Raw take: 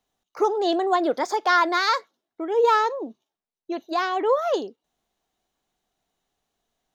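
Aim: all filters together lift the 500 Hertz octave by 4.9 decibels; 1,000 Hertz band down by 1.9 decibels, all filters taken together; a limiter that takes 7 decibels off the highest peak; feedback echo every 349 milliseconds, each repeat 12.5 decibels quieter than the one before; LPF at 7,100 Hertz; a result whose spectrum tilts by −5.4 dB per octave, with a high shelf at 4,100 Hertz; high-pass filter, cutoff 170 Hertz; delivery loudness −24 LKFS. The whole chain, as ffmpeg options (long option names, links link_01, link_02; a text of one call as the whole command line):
ffmpeg -i in.wav -af "highpass=170,lowpass=7100,equalizer=frequency=500:width_type=o:gain=7,equalizer=frequency=1000:width_type=o:gain=-5.5,highshelf=frequency=4100:gain=7,alimiter=limit=-12dB:level=0:latency=1,aecho=1:1:349|698|1047:0.237|0.0569|0.0137,volume=-1.5dB" out.wav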